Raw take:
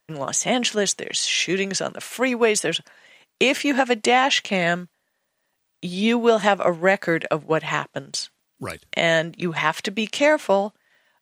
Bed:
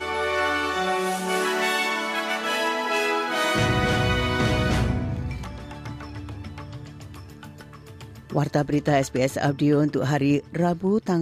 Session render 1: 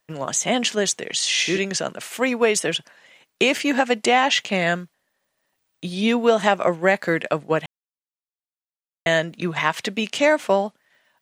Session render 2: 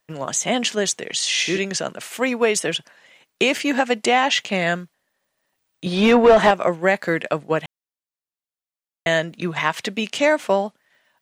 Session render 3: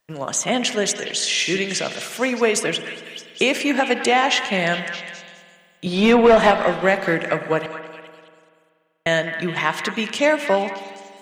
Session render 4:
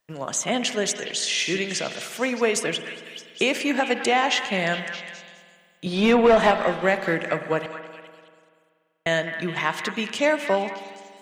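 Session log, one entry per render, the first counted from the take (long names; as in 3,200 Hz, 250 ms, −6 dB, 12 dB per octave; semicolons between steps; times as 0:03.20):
0:01.16–0:01.58: flutter between parallel walls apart 10.5 metres, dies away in 0.58 s; 0:07.66–0:09.06: silence
0:05.86–0:06.51: mid-hump overdrive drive 24 dB, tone 1,000 Hz, clips at −2 dBFS
echo through a band-pass that steps 207 ms, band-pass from 1,600 Hz, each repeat 0.7 octaves, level −7 dB; spring reverb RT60 2 s, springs 48 ms, chirp 60 ms, DRR 10 dB
level −3.5 dB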